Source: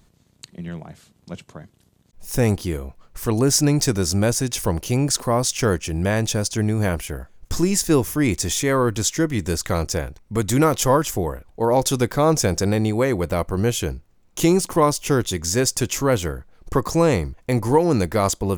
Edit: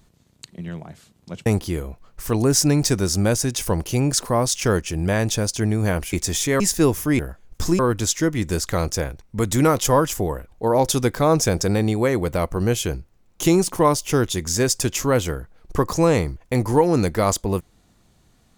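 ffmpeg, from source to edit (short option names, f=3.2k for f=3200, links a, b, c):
-filter_complex "[0:a]asplit=6[a][b][c][d][e][f];[a]atrim=end=1.462[g];[b]atrim=start=2.428:end=7.102[h];[c]atrim=start=8.288:end=8.762[i];[d]atrim=start=7.698:end=8.292[j];[e]atrim=start=7.098:end=7.702[k];[f]atrim=start=8.758[l];[g][h]acrossfade=d=0.004:c1=hsin:c2=hsin[m];[m][i]acrossfade=d=0.004:c1=hsin:c2=hsin[n];[n][j]acrossfade=d=0.004:c1=hsin:c2=hsin[o];[o][k]acrossfade=d=0.004:c1=hsin:c2=hsin[p];[p][l]acrossfade=d=0.004:c1=hsin:c2=hsin"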